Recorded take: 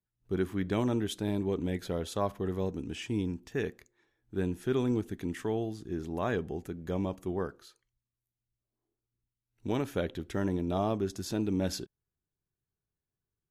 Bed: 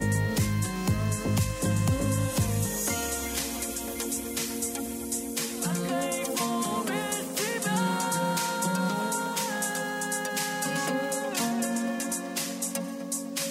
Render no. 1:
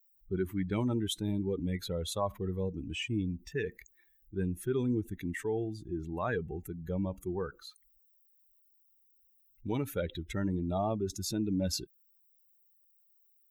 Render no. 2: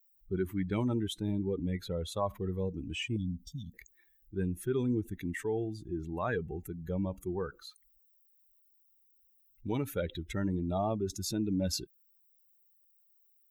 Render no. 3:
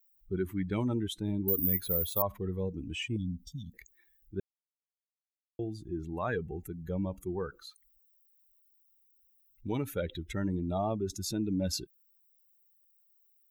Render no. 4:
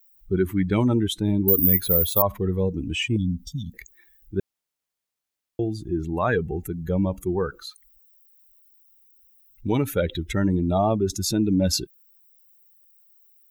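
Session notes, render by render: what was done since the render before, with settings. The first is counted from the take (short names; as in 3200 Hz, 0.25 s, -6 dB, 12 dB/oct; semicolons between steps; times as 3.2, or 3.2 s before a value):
per-bin expansion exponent 2; fast leveller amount 50%
1.03–2.17 high shelf 3100 Hz -7 dB; 3.16–3.74 brick-wall FIR band-stop 280–3000 Hz
1.48–2.22 careless resampling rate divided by 3×, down filtered, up zero stuff; 4.4–5.59 mute
gain +10.5 dB; limiter -3 dBFS, peak gain reduction 2 dB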